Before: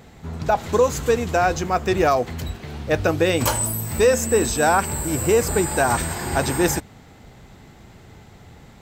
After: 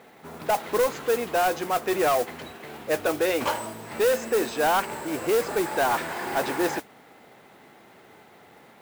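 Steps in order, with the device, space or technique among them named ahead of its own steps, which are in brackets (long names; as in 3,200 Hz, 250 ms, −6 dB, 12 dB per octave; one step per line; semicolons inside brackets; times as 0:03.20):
carbon microphone (band-pass filter 350–3,000 Hz; soft clipping −17 dBFS, distortion −12 dB; noise that follows the level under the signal 14 dB)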